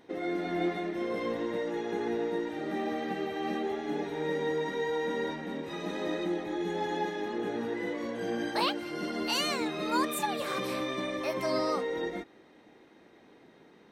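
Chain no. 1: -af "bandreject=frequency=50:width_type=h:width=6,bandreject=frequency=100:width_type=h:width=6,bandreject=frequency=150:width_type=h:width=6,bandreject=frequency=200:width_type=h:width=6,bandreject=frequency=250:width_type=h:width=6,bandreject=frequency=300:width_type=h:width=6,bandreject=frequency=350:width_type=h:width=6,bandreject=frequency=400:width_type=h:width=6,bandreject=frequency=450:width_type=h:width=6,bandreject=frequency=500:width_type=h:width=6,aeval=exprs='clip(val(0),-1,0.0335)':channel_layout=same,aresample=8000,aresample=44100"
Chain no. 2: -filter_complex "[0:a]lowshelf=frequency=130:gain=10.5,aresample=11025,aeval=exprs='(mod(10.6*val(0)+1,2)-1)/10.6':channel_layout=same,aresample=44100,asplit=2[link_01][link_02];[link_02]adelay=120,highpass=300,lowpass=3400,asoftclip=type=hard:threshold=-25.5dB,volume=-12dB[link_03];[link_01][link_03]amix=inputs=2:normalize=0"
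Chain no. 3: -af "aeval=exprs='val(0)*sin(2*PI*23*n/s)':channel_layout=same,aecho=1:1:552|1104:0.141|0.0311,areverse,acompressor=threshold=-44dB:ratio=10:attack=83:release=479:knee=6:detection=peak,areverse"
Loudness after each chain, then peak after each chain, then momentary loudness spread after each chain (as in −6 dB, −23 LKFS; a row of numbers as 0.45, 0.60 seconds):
−34.0, −31.5, −45.5 LKFS; −17.5, −16.5, −29.5 dBFS; 4, 5, 5 LU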